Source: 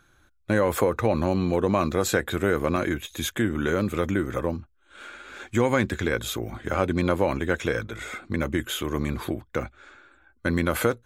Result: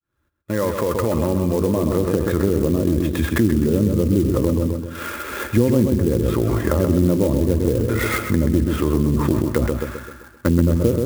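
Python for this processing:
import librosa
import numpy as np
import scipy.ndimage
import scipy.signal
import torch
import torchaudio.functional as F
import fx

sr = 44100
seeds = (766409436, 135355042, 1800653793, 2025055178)

p1 = fx.fade_in_head(x, sr, length_s=3.41)
p2 = fx.notch_comb(p1, sr, f0_hz=760.0)
p3 = fx.env_lowpass_down(p2, sr, base_hz=390.0, full_db=-23.0)
p4 = fx.air_absorb(p3, sr, metres=190.0)
p5 = fx.echo_filtered(p4, sr, ms=130, feedback_pct=45, hz=4500.0, wet_db=-7.0)
p6 = fx.over_compress(p5, sr, threshold_db=-36.0, ratio=-1.0)
p7 = p5 + (p6 * 10.0 ** (-1.0 / 20.0))
p8 = fx.peak_eq(p7, sr, hz=68.0, db=6.0, octaves=0.87)
p9 = fx.clock_jitter(p8, sr, seeds[0], jitter_ms=0.041)
y = p9 * 10.0 ** (7.5 / 20.0)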